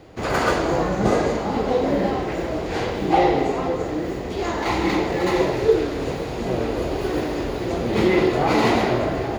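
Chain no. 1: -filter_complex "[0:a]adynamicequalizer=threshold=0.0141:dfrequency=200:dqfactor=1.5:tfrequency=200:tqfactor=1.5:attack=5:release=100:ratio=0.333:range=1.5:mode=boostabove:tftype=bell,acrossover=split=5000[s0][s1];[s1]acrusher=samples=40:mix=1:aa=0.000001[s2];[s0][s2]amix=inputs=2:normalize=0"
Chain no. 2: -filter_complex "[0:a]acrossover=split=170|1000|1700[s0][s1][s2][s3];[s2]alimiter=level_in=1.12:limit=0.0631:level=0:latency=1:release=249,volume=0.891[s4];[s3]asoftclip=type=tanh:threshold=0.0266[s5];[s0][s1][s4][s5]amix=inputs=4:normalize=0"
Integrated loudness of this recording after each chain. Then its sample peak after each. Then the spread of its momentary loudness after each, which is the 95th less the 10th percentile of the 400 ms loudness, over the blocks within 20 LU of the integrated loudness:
-21.0 LUFS, -22.0 LUFS; -4.5 dBFS, -5.5 dBFS; 8 LU, 7 LU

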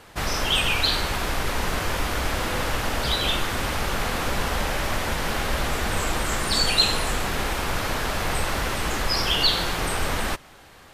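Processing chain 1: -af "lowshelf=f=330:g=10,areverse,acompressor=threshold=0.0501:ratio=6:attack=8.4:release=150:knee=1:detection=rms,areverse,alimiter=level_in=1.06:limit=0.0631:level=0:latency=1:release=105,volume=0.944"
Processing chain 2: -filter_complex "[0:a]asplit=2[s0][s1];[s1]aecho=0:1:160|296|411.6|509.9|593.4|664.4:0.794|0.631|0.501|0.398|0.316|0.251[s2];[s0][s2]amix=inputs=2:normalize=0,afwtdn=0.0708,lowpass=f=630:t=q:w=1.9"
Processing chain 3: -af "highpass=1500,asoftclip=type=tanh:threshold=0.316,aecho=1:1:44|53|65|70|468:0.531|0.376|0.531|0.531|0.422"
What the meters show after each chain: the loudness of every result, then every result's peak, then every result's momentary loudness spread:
-36.5 LUFS, -24.5 LUFS, -23.0 LUFS; -24.5 dBFS, -9.0 dBFS, -7.0 dBFS; 3 LU, 2 LU, 8 LU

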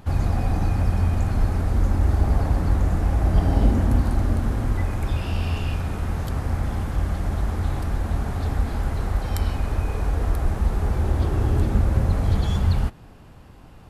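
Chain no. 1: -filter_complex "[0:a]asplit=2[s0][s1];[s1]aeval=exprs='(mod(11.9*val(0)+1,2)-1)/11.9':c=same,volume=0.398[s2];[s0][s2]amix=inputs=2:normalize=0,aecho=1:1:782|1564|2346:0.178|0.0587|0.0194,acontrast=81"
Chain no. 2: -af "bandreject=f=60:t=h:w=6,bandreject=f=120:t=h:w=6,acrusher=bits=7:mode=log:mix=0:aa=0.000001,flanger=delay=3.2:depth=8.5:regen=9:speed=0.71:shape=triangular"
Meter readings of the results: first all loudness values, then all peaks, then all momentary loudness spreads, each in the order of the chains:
-17.0 LUFS, -28.5 LUFS; -3.0 dBFS, -11.0 dBFS; 5 LU, 7 LU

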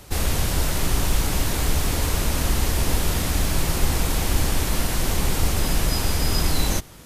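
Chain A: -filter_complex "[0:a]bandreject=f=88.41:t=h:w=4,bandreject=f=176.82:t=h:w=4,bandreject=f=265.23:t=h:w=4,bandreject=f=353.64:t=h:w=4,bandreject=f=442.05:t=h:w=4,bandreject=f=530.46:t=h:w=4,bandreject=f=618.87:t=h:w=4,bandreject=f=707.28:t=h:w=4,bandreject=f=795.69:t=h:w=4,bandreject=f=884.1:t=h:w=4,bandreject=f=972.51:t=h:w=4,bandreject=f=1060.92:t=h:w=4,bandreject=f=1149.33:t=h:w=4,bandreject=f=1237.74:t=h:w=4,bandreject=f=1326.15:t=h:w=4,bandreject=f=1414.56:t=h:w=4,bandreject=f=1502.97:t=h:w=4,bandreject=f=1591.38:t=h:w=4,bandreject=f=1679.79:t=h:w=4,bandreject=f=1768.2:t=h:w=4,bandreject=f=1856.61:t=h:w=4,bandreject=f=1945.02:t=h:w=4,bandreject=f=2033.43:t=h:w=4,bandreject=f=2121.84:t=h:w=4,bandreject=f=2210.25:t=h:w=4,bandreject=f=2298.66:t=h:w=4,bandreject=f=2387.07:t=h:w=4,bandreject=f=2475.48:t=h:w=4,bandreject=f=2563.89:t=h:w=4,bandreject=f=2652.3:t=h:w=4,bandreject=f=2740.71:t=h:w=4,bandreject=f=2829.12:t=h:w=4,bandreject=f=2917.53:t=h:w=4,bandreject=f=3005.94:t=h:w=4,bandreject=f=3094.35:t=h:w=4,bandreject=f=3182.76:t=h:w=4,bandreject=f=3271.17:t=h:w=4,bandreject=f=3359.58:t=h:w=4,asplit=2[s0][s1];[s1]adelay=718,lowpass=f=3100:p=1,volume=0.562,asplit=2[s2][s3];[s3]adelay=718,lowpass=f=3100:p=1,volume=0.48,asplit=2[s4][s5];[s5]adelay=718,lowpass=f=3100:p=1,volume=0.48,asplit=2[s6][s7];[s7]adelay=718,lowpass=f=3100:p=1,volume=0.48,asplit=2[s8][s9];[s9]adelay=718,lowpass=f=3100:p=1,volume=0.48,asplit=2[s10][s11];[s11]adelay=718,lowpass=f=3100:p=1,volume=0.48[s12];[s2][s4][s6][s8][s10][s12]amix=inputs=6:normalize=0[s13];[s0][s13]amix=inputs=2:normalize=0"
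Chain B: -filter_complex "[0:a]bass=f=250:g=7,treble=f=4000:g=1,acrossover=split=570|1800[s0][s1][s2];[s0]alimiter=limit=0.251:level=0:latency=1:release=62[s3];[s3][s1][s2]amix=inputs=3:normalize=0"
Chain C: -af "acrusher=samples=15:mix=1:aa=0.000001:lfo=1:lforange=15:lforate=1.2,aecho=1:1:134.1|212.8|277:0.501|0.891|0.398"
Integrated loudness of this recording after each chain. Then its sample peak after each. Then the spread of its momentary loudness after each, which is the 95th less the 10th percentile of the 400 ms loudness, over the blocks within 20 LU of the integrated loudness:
-23.0 LUFS, -22.0 LUFS, -21.0 LUFS; -5.5 dBFS, -8.0 dBFS, -2.5 dBFS; 2 LU, 1 LU, 1 LU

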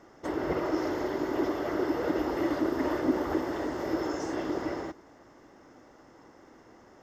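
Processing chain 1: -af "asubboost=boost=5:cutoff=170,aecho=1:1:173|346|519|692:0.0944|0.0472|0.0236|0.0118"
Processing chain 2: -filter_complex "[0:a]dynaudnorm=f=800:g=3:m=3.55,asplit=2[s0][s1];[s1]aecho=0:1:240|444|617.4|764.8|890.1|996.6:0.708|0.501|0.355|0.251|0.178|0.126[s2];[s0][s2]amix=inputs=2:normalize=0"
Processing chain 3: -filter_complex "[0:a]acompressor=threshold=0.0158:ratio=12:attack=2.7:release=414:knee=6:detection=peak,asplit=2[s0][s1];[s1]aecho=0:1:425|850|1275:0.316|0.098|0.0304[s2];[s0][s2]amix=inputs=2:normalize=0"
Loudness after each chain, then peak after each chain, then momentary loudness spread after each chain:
-31.5 LUFS, -18.5 LUFS, -42.5 LUFS; -15.0 dBFS, -2.0 dBFS, -30.0 dBFS; 5 LU, 15 LU, 13 LU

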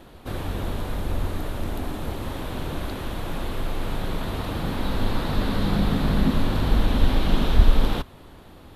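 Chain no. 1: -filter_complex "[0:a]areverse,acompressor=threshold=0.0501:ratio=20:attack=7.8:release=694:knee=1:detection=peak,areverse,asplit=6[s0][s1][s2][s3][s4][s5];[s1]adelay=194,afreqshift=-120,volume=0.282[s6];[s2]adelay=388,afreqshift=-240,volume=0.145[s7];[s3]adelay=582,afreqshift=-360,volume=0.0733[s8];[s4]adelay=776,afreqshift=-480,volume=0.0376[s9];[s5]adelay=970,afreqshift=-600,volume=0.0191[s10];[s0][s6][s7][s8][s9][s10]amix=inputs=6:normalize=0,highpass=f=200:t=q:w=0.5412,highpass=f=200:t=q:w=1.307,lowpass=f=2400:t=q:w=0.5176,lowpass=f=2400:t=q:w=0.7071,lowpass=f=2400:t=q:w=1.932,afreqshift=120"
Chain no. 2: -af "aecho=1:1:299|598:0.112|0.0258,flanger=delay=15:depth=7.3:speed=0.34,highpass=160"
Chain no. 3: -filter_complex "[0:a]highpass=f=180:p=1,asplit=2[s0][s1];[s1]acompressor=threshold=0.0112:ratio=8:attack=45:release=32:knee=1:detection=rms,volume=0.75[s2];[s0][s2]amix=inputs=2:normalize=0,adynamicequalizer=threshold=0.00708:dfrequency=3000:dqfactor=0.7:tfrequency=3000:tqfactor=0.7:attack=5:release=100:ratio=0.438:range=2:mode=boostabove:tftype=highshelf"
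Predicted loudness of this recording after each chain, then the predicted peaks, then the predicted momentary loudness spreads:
-39.0 LUFS, -32.5 LUFS, -27.5 LUFS; -24.0 dBFS, -16.0 dBFS, -10.0 dBFS; 5 LU, 9 LU, 6 LU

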